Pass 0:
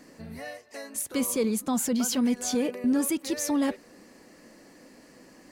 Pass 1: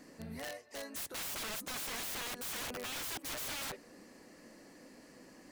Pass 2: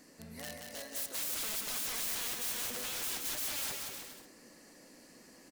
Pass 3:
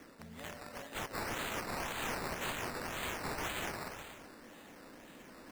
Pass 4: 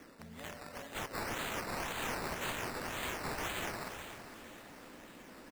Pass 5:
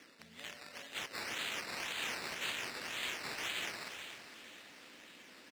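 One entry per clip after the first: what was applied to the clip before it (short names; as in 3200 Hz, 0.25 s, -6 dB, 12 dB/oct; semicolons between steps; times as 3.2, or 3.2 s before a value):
wrapped overs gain 31.5 dB; gain -4 dB
high shelf 3600 Hz +9 dB; on a send: bouncing-ball echo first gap 0.18 s, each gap 0.75×, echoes 5; on the sum: gain -4.5 dB
reverse; upward compressor, threshold -44 dBFS; reverse; decimation with a swept rate 11×, swing 60% 1.9 Hz; gain -2 dB
feedback echo 0.454 s, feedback 58%, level -13.5 dB
weighting filter D; gain -7 dB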